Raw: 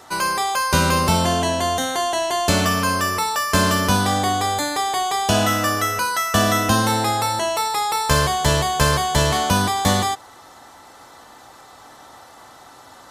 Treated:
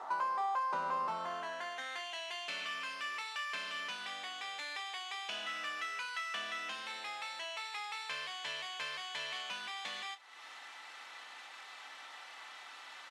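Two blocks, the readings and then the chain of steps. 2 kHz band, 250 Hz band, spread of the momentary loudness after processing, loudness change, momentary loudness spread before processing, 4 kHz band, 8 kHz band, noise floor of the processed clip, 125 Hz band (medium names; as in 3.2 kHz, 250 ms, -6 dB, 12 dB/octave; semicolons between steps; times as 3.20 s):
-15.5 dB, -37.0 dB, 14 LU, -20.5 dB, 4 LU, -16.5 dB, -28.0 dB, -52 dBFS, under -40 dB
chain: CVSD coder 64 kbps; high-pass 150 Hz 24 dB/octave; compression 3:1, threshold -39 dBFS, peak gain reduction 18 dB; band-pass sweep 940 Hz -> 2.5 kHz, 0.94–2.13 s; doubling 29 ms -12 dB; trim +5 dB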